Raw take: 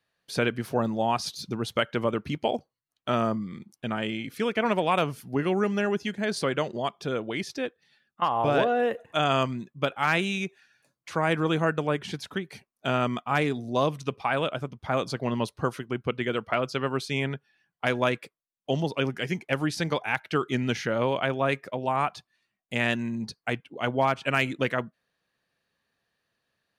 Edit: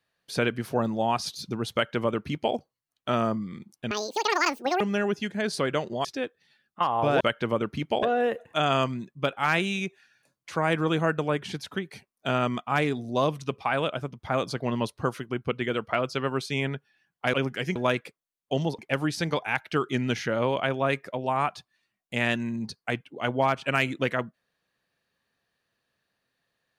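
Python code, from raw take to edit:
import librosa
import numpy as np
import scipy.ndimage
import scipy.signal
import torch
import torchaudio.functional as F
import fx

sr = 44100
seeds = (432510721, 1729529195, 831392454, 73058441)

y = fx.edit(x, sr, fx.duplicate(start_s=1.73, length_s=0.82, to_s=8.62),
    fx.speed_span(start_s=3.91, length_s=1.73, speed=1.93),
    fx.cut(start_s=6.88, length_s=0.58),
    fx.move(start_s=18.96, length_s=0.42, to_s=17.93), tone=tone)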